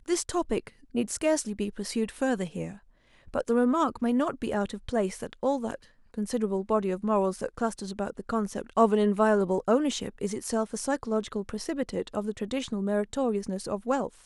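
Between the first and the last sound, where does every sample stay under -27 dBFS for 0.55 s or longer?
2.65–3.35

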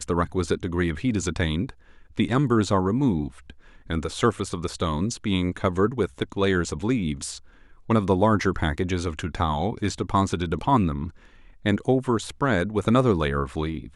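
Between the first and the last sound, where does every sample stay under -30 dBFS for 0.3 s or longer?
1.7–2.17
3.5–3.9
7.37–7.89
11.09–11.65

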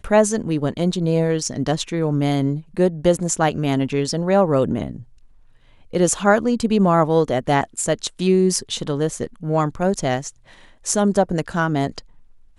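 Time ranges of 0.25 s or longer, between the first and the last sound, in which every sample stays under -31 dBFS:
5.02–5.93
10.3–10.86

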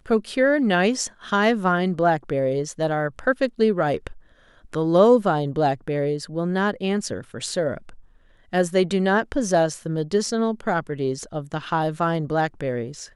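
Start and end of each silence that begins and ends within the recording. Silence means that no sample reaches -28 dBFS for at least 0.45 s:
4.07–4.74
7.89–8.53

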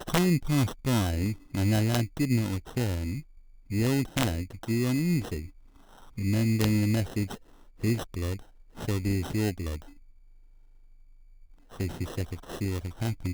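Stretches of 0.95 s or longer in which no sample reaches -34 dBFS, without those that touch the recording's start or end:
9.77–11.8

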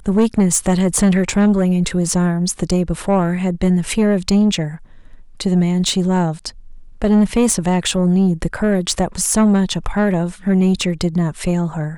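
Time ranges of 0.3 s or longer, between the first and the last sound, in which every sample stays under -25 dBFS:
4.75–5.4
6.49–7.02

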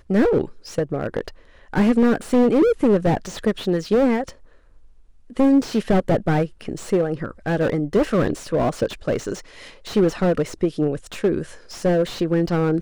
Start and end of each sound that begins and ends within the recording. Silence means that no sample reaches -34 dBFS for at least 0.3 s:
1.73–4.31

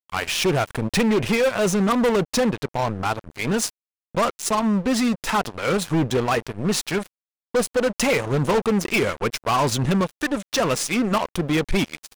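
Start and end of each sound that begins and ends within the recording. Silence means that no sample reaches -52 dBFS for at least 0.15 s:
4.15–7.07

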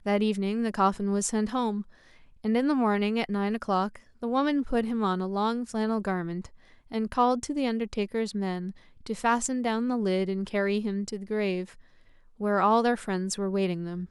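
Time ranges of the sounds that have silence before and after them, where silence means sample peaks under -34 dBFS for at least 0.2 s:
2.44–3.96
4.23–6.46
6.92–8.71
9.06–11.64

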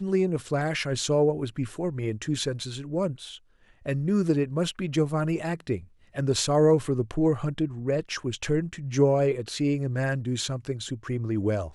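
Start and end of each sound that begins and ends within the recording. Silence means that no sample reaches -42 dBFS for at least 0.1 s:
3.86–5.84

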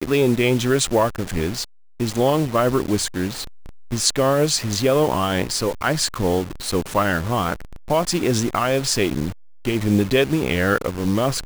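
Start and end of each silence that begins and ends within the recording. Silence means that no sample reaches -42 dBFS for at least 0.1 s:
1.64–2

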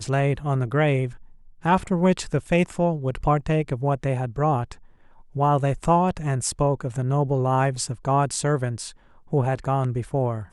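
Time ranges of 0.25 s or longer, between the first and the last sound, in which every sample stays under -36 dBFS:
1.16–1.64
4.73–5.35
8.91–9.32

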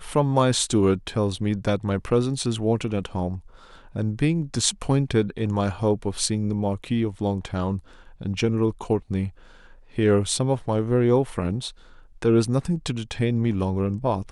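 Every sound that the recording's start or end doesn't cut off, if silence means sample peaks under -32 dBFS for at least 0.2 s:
3.95–7.79
8.21–9.29
9.98–11.7

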